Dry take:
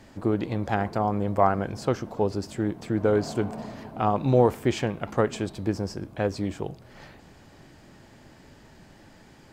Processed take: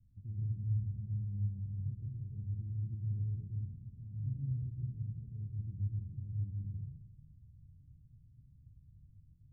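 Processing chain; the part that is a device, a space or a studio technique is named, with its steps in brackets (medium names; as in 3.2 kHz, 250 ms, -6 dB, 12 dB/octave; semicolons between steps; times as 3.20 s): club heard from the street (peak limiter -17.5 dBFS, peak gain reduction 10.5 dB; low-pass 130 Hz 24 dB/octave; reverberation RT60 0.95 s, pre-delay 112 ms, DRR -3.5 dB); trim -8.5 dB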